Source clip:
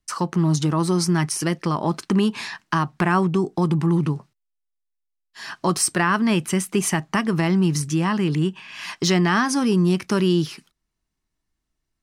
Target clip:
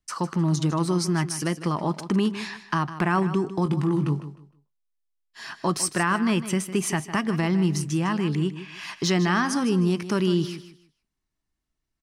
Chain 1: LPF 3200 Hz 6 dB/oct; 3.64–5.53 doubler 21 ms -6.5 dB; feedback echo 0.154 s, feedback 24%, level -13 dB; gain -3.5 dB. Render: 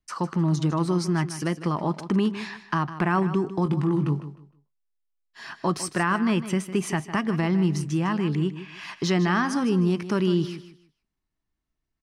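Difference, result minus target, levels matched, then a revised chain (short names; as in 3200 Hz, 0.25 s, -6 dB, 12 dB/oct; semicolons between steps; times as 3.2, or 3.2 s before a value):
8000 Hz band -6.0 dB
LPF 11000 Hz 6 dB/oct; 3.64–5.53 doubler 21 ms -6.5 dB; feedback echo 0.154 s, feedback 24%, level -13 dB; gain -3.5 dB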